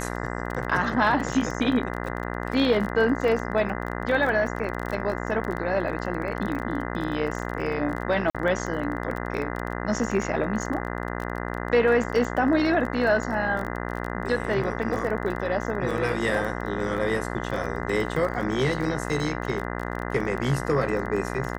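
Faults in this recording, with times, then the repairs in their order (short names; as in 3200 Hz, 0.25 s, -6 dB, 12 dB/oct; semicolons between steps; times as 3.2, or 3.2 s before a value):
buzz 60 Hz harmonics 34 -31 dBFS
crackle 24/s -30 dBFS
8.3–8.35 gap 46 ms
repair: de-click; de-hum 60 Hz, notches 34; interpolate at 8.3, 46 ms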